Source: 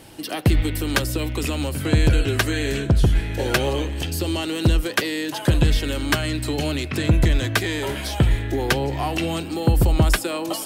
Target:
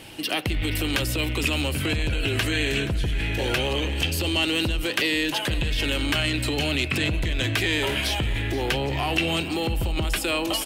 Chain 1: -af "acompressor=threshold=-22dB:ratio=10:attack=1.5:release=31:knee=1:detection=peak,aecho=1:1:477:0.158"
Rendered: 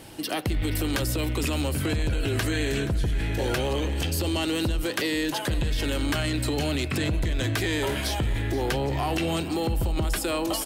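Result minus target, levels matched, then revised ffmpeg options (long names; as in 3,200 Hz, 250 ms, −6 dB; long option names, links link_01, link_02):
2,000 Hz band −3.5 dB
-af "acompressor=threshold=-22dB:ratio=10:attack=1.5:release=31:knee=1:detection=peak,equalizer=frequency=2700:width_type=o:width=0.87:gain=9.5,aecho=1:1:477:0.158"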